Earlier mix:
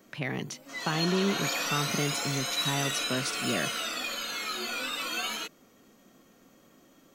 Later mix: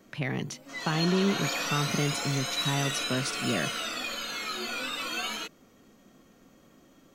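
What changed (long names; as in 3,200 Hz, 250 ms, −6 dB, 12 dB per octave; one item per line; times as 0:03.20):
background: add high-shelf EQ 10,000 Hz −6 dB
master: add low-shelf EQ 130 Hz +8 dB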